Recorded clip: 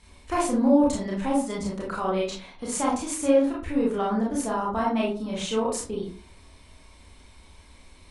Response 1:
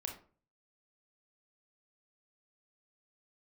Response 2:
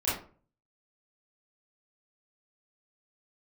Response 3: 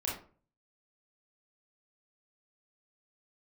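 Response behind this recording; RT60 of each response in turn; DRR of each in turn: 3; 0.40 s, 0.40 s, 0.40 s; 2.0 dB, -10.5 dB, -5.0 dB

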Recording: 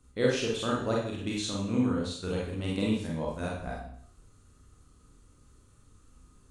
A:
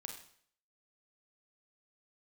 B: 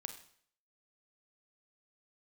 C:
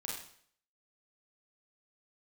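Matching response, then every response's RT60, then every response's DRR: C; 0.60 s, 0.60 s, 0.60 s; 2.5 dB, 6.5 dB, -4.0 dB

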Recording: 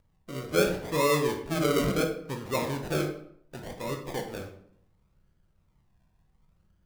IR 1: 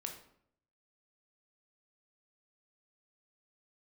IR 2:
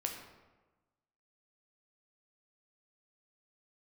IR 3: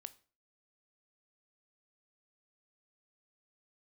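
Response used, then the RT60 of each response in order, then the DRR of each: 1; 0.65 s, 1.2 s, 0.40 s; 2.5 dB, 2.0 dB, 12.5 dB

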